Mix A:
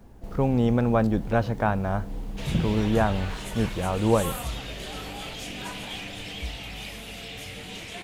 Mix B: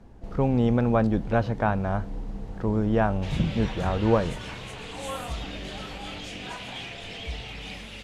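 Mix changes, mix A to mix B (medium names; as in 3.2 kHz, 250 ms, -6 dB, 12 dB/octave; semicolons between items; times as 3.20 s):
second sound: entry +0.85 s; master: add distance through air 63 m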